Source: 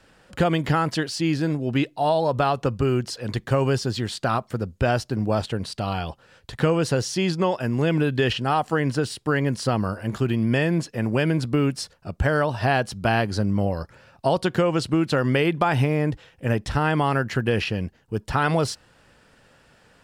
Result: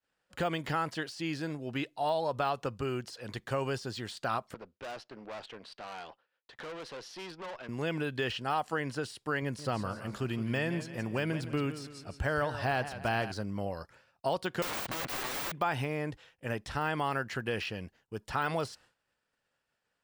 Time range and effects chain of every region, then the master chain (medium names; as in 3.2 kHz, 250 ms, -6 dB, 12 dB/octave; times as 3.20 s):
4.54–7.69 s: three-band isolator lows -16 dB, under 240 Hz, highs -23 dB, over 4.4 kHz + valve stage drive 29 dB, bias 0.55
9.42–13.32 s: bass shelf 160 Hz +5 dB + modulated delay 166 ms, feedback 46%, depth 76 cents, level -12.5 dB
14.62–15.52 s: peaking EQ 1.7 kHz +14 dB 2.5 oct + waveshaping leveller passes 3 + integer overflow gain 15 dB
whole clip: de-esser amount 80%; expander -44 dBFS; bass shelf 420 Hz -9.5 dB; trim -6.5 dB